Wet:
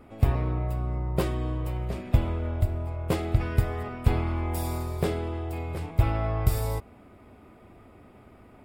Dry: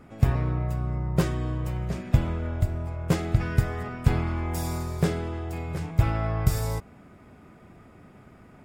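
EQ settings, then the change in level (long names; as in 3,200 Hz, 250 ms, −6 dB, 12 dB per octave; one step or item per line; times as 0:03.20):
graphic EQ with 15 bands 160 Hz −10 dB, 1,600 Hz −6 dB, 6,300 Hz −10 dB
+1.5 dB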